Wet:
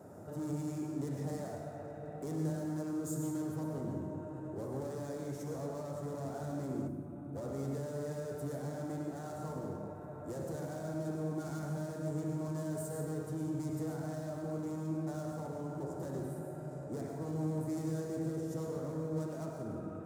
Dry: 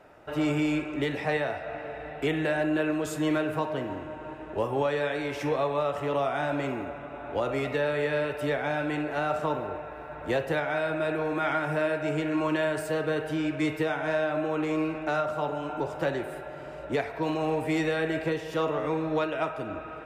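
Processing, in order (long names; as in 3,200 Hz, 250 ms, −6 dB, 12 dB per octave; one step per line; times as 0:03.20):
flutter between parallel walls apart 11.1 metres, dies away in 0.31 s
hard clipping −31 dBFS, distortion −7 dB
brickwall limiter −41.5 dBFS, peak gain reduction 10.5 dB
drawn EQ curve 200 Hz 0 dB, 1,400 Hz −16 dB, 2,700 Hz −29 dB, 7,100 Hz −1 dB
on a send at −2.5 dB: convolution reverb RT60 1.0 s, pre-delay 93 ms
on the sum: gain on a spectral selection 0:06.88–0:07.36, 380–8,300 Hz −8 dB
high-pass filter 90 Hz 24 dB per octave
low-shelf EQ 180 Hz +3.5 dB
mains-hum notches 60/120/180/240/300 Hz
level +8.5 dB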